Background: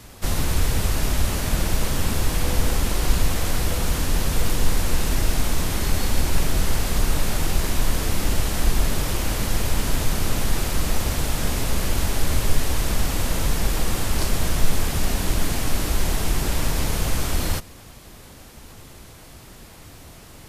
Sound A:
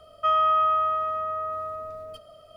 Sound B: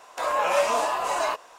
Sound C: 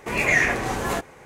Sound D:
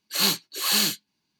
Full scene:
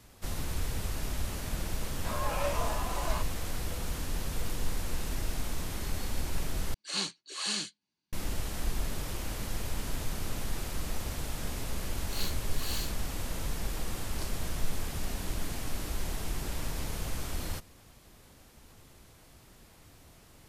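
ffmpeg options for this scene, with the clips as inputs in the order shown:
-filter_complex "[4:a]asplit=2[s0][s1];[0:a]volume=0.237[s2];[s0]aresample=22050,aresample=44100[s3];[s2]asplit=2[s4][s5];[s4]atrim=end=6.744[s6];[s3]atrim=end=1.39,asetpts=PTS-STARTPTS,volume=0.299[s7];[s5]atrim=start=8.126[s8];[2:a]atrim=end=1.58,asetpts=PTS-STARTPTS,volume=0.266,afade=t=in:d=0.004:c=hsin,afade=t=out:st=1.576:d=0.004:c=hsin,adelay=1870[s9];[s1]atrim=end=1.39,asetpts=PTS-STARTPTS,volume=0.15,afade=t=in:d=0.004:c=hsin,afade=t=out:st=1.386:d=0.004:c=hsin,adelay=11970[s10];[s6][s7]acrossfade=d=0.004:c1=hsin:c2=hsin[s11];[s11][s8]acrossfade=d=0.004:c1=hsin:c2=hsin[s12];[s12][s9][s10]amix=inputs=3:normalize=0"

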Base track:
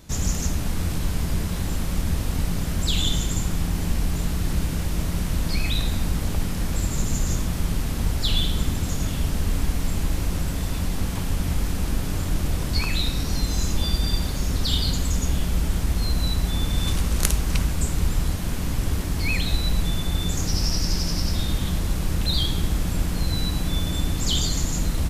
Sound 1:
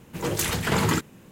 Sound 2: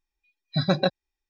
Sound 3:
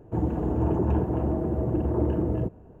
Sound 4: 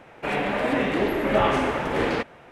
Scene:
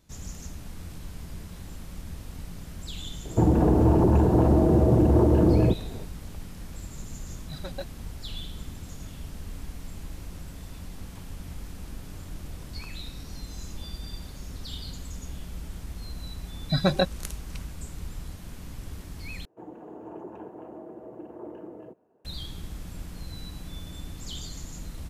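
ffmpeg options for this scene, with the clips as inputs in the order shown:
-filter_complex "[3:a]asplit=2[s0][s1];[2:a]asplit=2[s2][s3];[0:a]volume=0.178[s4];[s0]alimiter=level_in=10:limit=0.891:release=50:level=0:latency=1[s5];[s2]aphaser=in_gain=1:out_gain=1:delay=4.6:decay=0.64:speed=1.9:type=triangular[s6];[s1]highpass=350[s7];[s4]asplit=2[s8][s9];[s8]atrim=end=19.454[s10];[s7]atrim=end=2.8,asetpts=PTS-STARTPTS,volume=0.282[s11];[s9]atrim=start=22.246[s12];[s5]atrim=end=2.8,asetpts=PTS-STARTPTS,volume=0.299,afade=t=in:d=0.004:c=hsin,afade=t=out:st=2.796:d=0.004:c=hsin,adelay=143325S[s13];[s6]atrim=end=1.29,asetpts=PTS-STARTPTS,volume=0.141,afade=t=in:d=0.004:c=hsin,afade=t=out:st=1.286:d=0.004:c=hsin,adelay=6950[s14];[s3]atrim=end=1.29,asetpts=PTS-STARTPTS,volume=0.944,afade=t=in:d=0.004:c=hsin,afade=t=out:st=1.286:d=0.004:c=hsin,adelay=16160[s15];[s10][s11]acrossfade=d=0.004:c1=hsin:c2=hsin[s16];[s16][s12]acrossfade=d=0.004:c1=hsin:c2=hsin[s17];[s17][s13][s14][s15]amix=inputs=4:normalize=0"

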